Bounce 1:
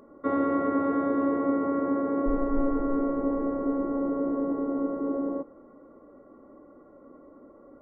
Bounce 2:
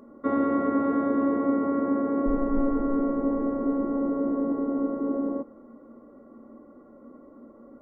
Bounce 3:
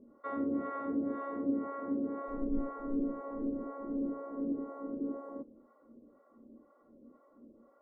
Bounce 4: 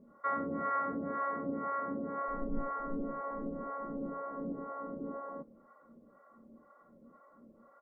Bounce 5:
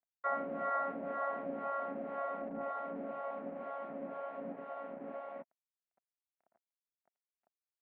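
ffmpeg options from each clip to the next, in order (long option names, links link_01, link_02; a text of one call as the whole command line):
ffmpeg -i in.wav -af "equalizer=frequency=230:width=7.5:gain=13.5" out.wav
ffmpeg -i in.wav -filter_complex "[0:a]acrossover=split=540[link_01][link_02];[link_01]aeval=exprs='val(0)*(1-1/2+1/2*cos(2*PI*2*n/s))':channel_layout=same[link_03];[link_02]aeval=exprs='val(0)*(1-1/2-1/2*cos(2*PI*2*n/s))':channel_layout=same[link_04];[link_03][link_04]amix=inputs=2:normalize=0,volume=-6dB" out.wav
ffmpeg -i in.wav -af "firequalizer=gain_entry='entry(100,0);entry(170,9);entry(270,-7);entry(590,2);entry(1400,10);entry(1900,9);entry(2800,-1)':delay=0.05:min_phase=1" out.wav
ffmpeg -i in.wav -af "aeval=exprs='sgn(val(0))*max(abs(val(0))-0.00299,0)':channel_layout=same,highpass=300,equalizer=frequency=310:width_type=q:width=4:gain=-9,equalizer=frequency=460:width_type=q:width=4:gain=-8,equalizer=frequency=680:width_type=q:width=4:gain=9,equalizer=frequency=1100:width_type=q:width=4:gain=-7,equalizer=frequency=1600:width_type=q:width=4:gain=-4,lowpass=frequency=2000:width=0.5412,lowpass=frequency=2000:width=1.3066,volume=3.5dB" out.wav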